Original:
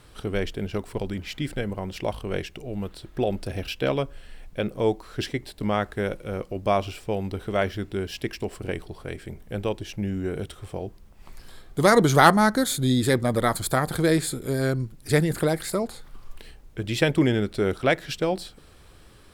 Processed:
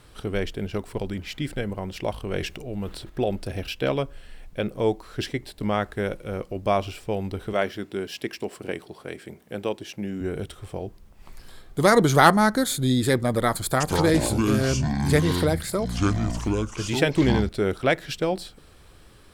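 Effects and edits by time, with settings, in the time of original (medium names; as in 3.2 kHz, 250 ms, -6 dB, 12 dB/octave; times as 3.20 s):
2.23–3.10 s: transient shaper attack 0 dB, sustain +7 dB
7.53–10.21 s: high-pass 180 Hz
13.65–17.49 s: ever faster or slower copies 151 ms, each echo -7 st, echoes 2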